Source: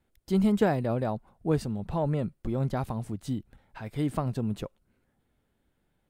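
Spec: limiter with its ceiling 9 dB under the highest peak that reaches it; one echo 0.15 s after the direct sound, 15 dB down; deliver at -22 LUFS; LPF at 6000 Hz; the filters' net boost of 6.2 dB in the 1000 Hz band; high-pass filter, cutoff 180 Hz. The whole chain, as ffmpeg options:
-af "highpass=180,lowpass=6k,equalizer=f=1k:t=o:g=8.5,alimiter=limit=-19dB:level=0:latency=1,aecho=1:1:150:0.178,volume=10.5dB"

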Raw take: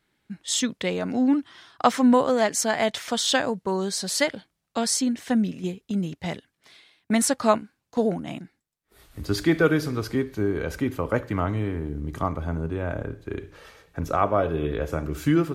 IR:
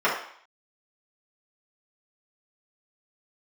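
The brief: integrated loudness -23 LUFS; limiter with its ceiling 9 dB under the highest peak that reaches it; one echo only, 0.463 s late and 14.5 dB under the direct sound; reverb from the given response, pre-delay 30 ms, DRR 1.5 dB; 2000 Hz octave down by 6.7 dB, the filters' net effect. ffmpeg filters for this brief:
-filter_complex "[0:a]equalizer=f=2k:t=o:g=-9,alimiter=limit=-15.5dB:level=0:latency=1,aecho=1:1:463:0.188,asplit=2[a][b];[1:a]atrim=start_sample=2205,adelay=30[c];[b][c]afir=irnorm=-1:irlink=0,volume=-19dB[d];[a][d]amix=inputs=2:normalize=0,volume=3dB"

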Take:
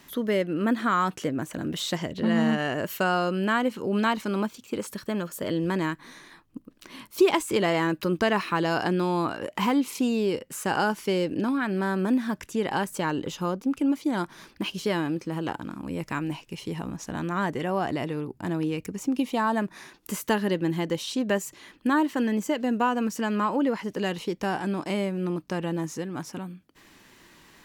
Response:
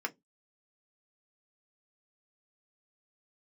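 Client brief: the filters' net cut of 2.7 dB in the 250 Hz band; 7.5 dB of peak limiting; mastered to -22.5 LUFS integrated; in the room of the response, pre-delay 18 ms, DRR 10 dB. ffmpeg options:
-filter_complex "[0:a]equalizer=f=250:t=o:g=-3.5,alimiter=limit=-17.5dB:level=0:latency=1,asplit=2[a][b];[1:a]atrim=start_sample=2205,adelay=18[c];[b][c]afir=irnorm=-1:irlink=0,volume=-14dB[d];[a][d]amix=inputs=2:normalize=0,volume=7dB"

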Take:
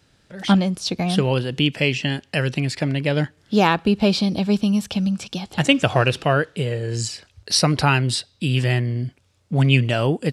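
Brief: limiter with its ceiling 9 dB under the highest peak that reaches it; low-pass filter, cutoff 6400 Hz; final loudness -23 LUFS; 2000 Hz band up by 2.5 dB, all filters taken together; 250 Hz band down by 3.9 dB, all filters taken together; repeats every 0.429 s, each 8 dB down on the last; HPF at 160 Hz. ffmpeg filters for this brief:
-af "highpass=160,lowpass=6.4k,equalizer=f=250:t=o:g=-3.5,equalizer=f=2k:t=o:g=3.5,alimiter=limit=-8.5dB:level=0:latency=1,aecho=1:1:429|858|1287|1716|2145:0.398|0.159|0.0637|0.0255|0.0102"

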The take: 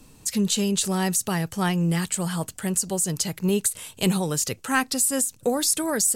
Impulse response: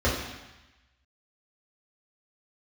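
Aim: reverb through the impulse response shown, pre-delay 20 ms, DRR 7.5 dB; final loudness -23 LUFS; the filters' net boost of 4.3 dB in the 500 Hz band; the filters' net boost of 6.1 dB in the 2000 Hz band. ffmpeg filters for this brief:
-filter_complex "[0:a]equalizer=f=500:t=o:g=5,equalizer=f=2k:t=o:g=7.5,asplit=2[a][b];[1:a]atrim=start_sample=2205,adelay=20[c];[b][c]afir=irnorm=-1:irlink=0,volume=-22.5dB[d];[a][d]amix=inputs=2:normalize=0,volume=-1.5dB"

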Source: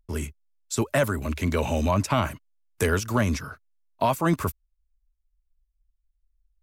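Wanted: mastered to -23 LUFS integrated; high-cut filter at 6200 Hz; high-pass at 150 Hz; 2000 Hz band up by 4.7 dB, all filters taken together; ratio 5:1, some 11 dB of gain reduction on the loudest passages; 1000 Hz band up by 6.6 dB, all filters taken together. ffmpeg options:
-af "highpass=150,lowpass=6.2k,equalizer=f=1k:t=o:g=7,equalizer=f=2k:t=o:g=3.5,acompressor=threshold=-26dB:ratio=5,volume=8.5dB"

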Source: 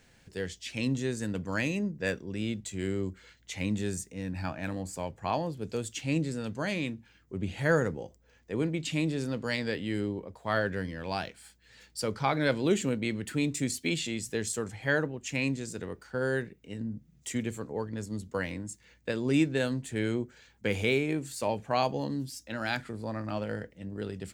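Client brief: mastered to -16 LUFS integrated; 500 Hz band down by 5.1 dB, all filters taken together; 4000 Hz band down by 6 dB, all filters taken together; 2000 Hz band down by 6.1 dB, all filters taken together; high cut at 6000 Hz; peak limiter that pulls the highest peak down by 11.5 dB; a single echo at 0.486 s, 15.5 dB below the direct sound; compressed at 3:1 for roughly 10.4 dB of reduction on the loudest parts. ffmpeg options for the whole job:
-af "lowpass=6k,equalizer=f=500:t=o:g=-6,equalizer=f=2k:t=o:g=-6.5,equalizer=f=4k:t=o:g=-4.5,acompressor=threshold=-37dB:ratio=3,alimiter=level_in=11dB:limit=-24dB:level=0:latency=1,volume=-11dB,aecho=1:1:486:0.168,volume=29dB"

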